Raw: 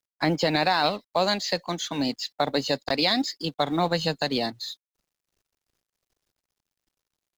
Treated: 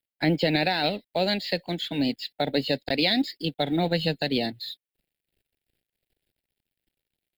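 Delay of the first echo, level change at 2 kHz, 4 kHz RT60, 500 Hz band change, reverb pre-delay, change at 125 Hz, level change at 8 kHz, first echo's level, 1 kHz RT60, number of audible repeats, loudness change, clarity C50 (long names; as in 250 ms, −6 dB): no echo audible, −0.5 dB, no reverb audible, −0.5 dB, no reverb audible, +2.5 dB, below −10 dB, no echo audible, no reverb audible, no echo audible, −0.5 dB, no reverb audible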